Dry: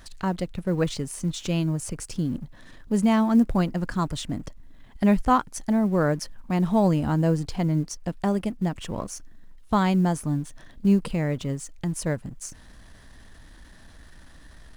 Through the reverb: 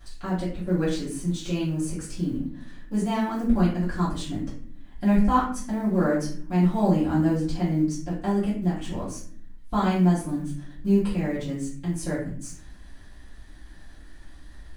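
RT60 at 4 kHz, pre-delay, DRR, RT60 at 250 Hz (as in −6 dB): 0.35 s, 3 ms, −10.5 dB, 0.95 s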